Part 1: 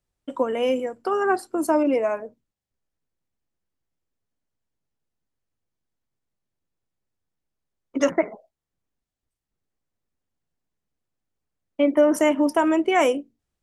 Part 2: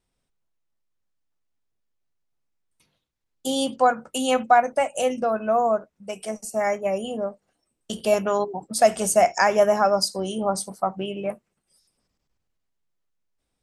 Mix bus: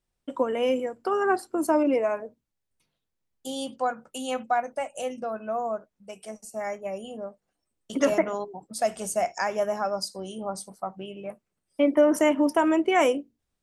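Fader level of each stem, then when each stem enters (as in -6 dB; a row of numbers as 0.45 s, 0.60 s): -2.0 dB, -8.5 dB; 0.00 s, 0.00 s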